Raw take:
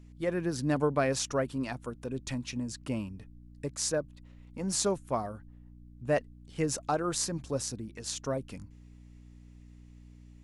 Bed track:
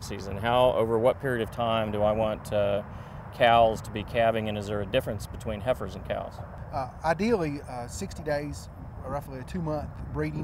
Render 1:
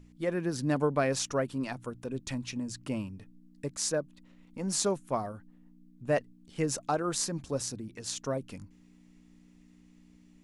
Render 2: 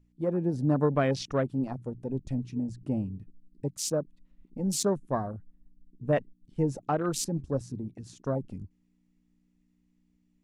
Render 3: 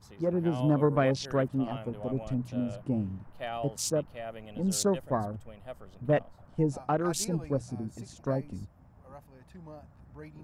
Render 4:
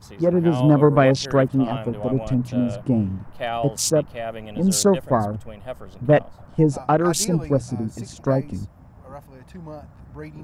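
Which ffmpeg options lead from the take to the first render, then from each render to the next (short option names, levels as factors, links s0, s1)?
-af "bandreject=f=60:t=h:w=4,bandreject=f=120:t=h:w=4"
-af "afwtdn=0.0141,lowshelf=f=260:g=7.5"
-filter_complex "[1:a]volume=0.15[s0];[0:a][s0]amix=inputs=2:normalize=0"
-af "volume=3.16,alimiter=limit=0.708:level=0:latency=1"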